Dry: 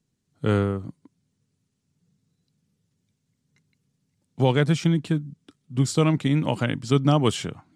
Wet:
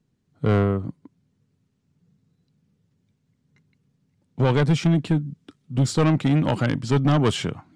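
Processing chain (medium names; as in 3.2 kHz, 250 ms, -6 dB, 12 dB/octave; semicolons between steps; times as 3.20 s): low-pass 2 kHz 6 dB/octave, from 4.43 s 3.9 kHz; saturation -18.5 dBFS, distortion -10 dB; trim +5.5 dB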